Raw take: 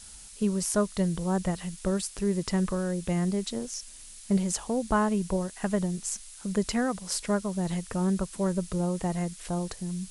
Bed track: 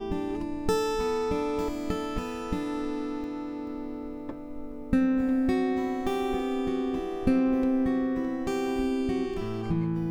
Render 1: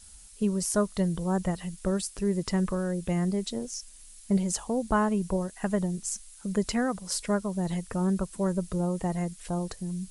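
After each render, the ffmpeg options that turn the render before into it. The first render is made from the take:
-af "afftdn=nr=7:nf=-47"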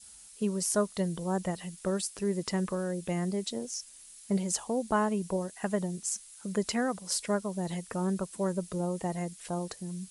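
-af "highpass=f=260:p=1,adynamicequalizer=threshold=0.00316:dfrequency=1300:dqfactor=1.6:tfrequency=1300:tqfactor=1.6:attack=5:release=100:ratio=0.375:range=2:mode=cutabove:tftype=bell"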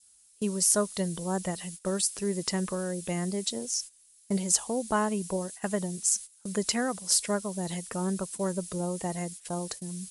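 -af "agate=range=-16dB:threshold=-44dB:ratio=16:detection=peak,highshelf=f=3.5k:g=9"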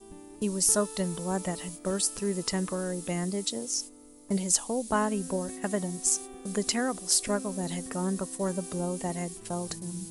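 -filter_complex "[1:a]volume=-17dB[a];[0:a][a]amix=inputs=2:normalize=0"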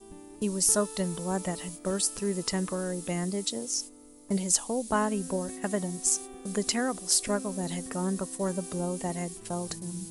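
-af anull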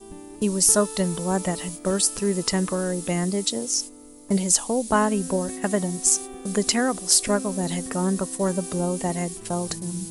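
-af "volume=6.5dB,alimiter=limit=-2dB:level=0:latency=1"

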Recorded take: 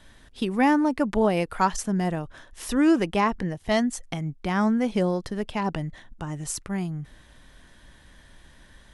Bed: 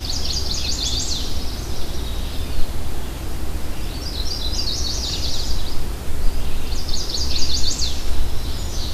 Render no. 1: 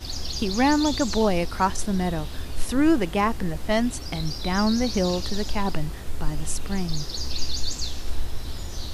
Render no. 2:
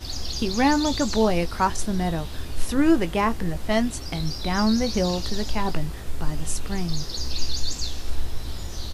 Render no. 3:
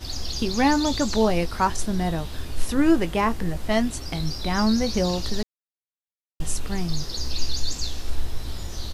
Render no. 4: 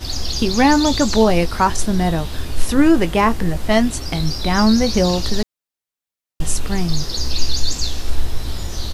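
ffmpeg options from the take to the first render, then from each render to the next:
-filter_complex "[1:a]volume=-8dB[a];[0:a][a]amix=inputs=2:normalize=0"
-filter_complex "[0:a]asplit=2[a][b];[b]adelay=18,volume=-11.5dB[c];[a][c]amix=inputs=2:normalize=0"
-filter_complex "[0:a]asplit=3[a][b][c];[a]atrim=end=5.43,asetpts=PTS-STARTPTS,afade=t=out:st=5.426:d=0.004:c=hsin[d];[b]atrim=start=5.43:end=6.4,asetpts=PTS-STARTPTS,volume=0[e];[c]atrim=start=6.4,asetpts=PTS-STARTPTS,afade=t=in:d=0.004:c=hsin[f];[d][e][f]concat=n=3:v=0:a=1"
-af "volume=7dB,alimiter=limit=-3dB:level=0:latency=1"

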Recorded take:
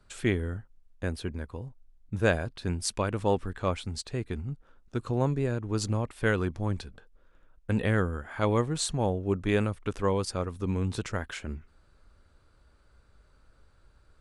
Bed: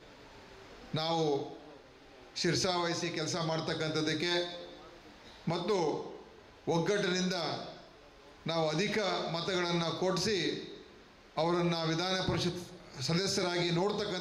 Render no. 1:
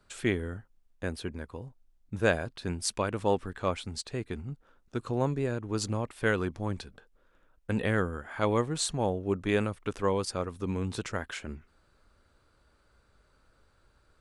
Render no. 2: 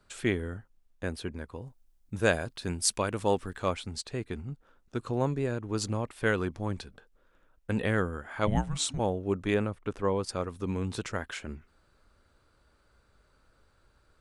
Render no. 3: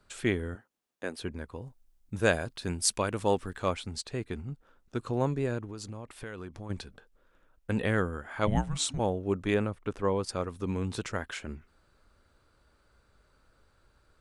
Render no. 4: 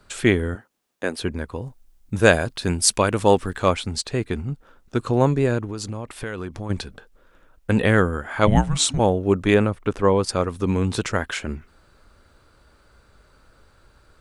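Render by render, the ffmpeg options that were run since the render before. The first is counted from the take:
-af "lowshelf=f=120:g=-8"
-filter_complex "[0:a]asettb=1/sr,asplit=3[a][b][c];[a]atrim=end=1.664[d];[b]atrim=start=1.66:end=3.73,asetpts=PTS-STARTPTS,afade=t=in:d=0.004:c=qsin,afade=t=out:st=2.066:d=0.004:c=qsin,highshelf=f=5.5k:g=8.5[e];[c]atrim=start=3.726[f];[d][e]acrossfade=d=0.004:c1=hsin:c2=qsin[g];[g][f]acrossfade=d=0.004:c1=qsin:c2=hsin,asplit=3[h][i][j];[h]afade=t=out:st=8.46:d=0.02[k];[i]afreqshift=-300,afade=t=in:st=8.46:d=0.02,afade=t=out:st=8.98:d=0.02[l];[j]afade=t=in:st=8.98:d=0.02[m];[k][l][m]amix=inputs=3:normalize=0,asettb=1/sr,asplit=3[n][o][p];[n]atrim=end=9.544[q];[o]atrim=start=9.54:end=10.29,asetpts=PTS-STARTPTS,afade=t=in:d=0.004:c=qsin,afade=t=out:st=0.746:d=0.004:c=qsin,highshelf=f=2.3k:g=-9[r];[p]atrim=start=10.286[s];[q][r]acrossfade=d=0.004:c1=hsin:c2=qsin[t];[t][s]acrossfade=d=0.004:c1=qsin:c2=hsin"
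-filter_complex "[0:a]asettb=1/sr,asplit=3[a][b][c];[a]atrim=end=0.554[d];[b]atrim=start=0.55:end=1.19,asetpts=PTS-STARTPTS,afade=t=in:d=0.004:c=qsin,afade=t=out:st=0.636:d=0.004:c=qsin,highpass=270[e];[c]atrim=start=1.186[f];[d][e]acrossfade=d=0.004:c1=hsin:c2=qsin[g];[g][f]acrossfade=d=0.004:c1=qsin:c2=hsin,asplit=3[h][i][j];[h]afade=t=out:st=5.64:d=0.02[k];[i]acompressor=threshold=-38dB:ratio=5:attack=3.2:release=140:knee=1:detection=peak,afade=t=in:st=5.64:d=0.02,afade=t=out:st=6.69:d=0.02[l];[j]afade=t=in:st=6.69:d=0.02[m];[k][l][m]amix=inputs=3:normalize=0"
-af "volume=10.5dB,alimiter=limit=-1dB:level=0:latency=1"

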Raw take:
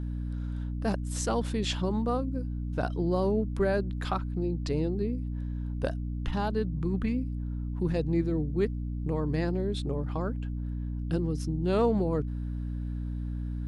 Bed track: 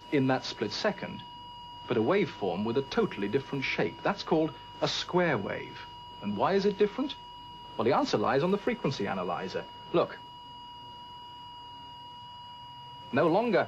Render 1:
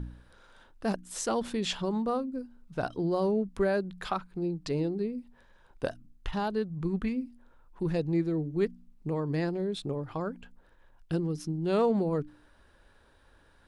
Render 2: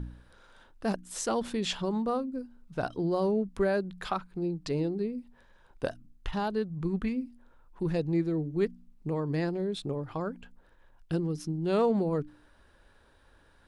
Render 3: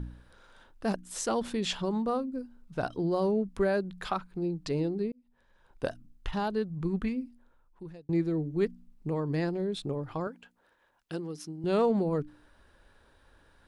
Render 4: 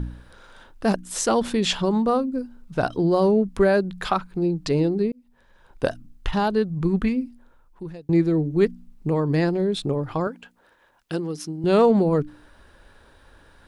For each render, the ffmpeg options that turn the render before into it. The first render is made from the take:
-af "bandreject=f=60:t=h:w=4,bandreject=f=120:t=h:w=4,bandreject=f=180:t=h:w=4,bandreject=f=240:t=h:w=4,bandreject=f=300:t=h:w=4"
-af anull
-filter_complex "[0:a]asettb=1/sr,asplit=3[a][b][c];[a]atrim=end=10.274[d];[b]atrim=start=10.27:end=11.64,asetpts=PTS-STARTPTS,afade=t=in:d=0.004:c=qsin,afade=t=out:st=1.366:d=0.004:c=qsin,highpass=f=480:p=1[e];[c]atrim=start=11.636[f];[d][e]acrossfade=d=0.004:c1=hsin:c2=qsin[g];[g][f]acrossfade=d=0.004:c1=qsin:c2=hsin,asplit=3[h][i][j];[h]atrim=end=5.12,asetpts=PTS-STARTPTS,afade=t=out:st=5.116:d=0.004:c=hsin[k];[i]atrim=start=5.12:end=8.09,asetpts=PTS-STARTPTS,afade=t=in:d=0.75,afade=t=out:st=1.92:d=1.05[l];[j]atrim=start=8.09,asetpts=PTS-STARTPTS,afade=t=in:d=0.004:c=hsin[m];[k][l][m]concat=n=3:v=0:a=1"
-af "volume=9dB"

